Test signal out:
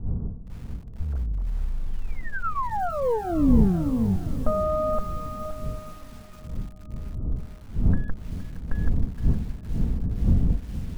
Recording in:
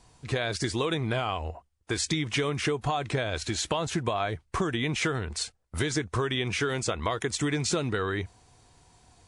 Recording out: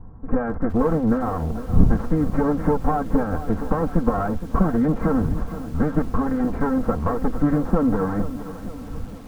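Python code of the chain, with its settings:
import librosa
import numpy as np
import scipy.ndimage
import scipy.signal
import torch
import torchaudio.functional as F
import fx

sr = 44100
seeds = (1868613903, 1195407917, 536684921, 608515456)

p1 = fx.lower_of_two(x, sr, delay_ms=3.8)
p2 = fx.dmg_wind(p1, sr, seeds[0], corner_hz=120.0, level_db=-43.0)
p3 = scipy.signal.sosfilt(scipy.signal.butter(6, 1400.0, 'lowpass', fs=sr, output='sos'), p2)
p4 = fx.low_shelf(p3, sr, hz=290.0, db=10.5)
p5 = p4 + 0.31 * np.pad(p4, (int(4.4 * sr / 1000.0), 0))[:len(p4)]
p6 = 10.0 ** (-20.5 / 20.0) * np.tanh(p5 / 10.0 ** (-20.5 / 20.0))
p7 = p5 + (p6 * 10.0 ** (-5.5 / 20.0))
p8 = fx.echo_swing(p7, sr, ms=1316, ratio=1.5, feedback_pct=39, wet_db=-23.0)
p9 = fx.echo_crushed(p8, sr, ms=466, feedback_pct=55, bits=7, wet_db=-12.5)
y = p9 * 10.0 ** (3.0 / 20.0)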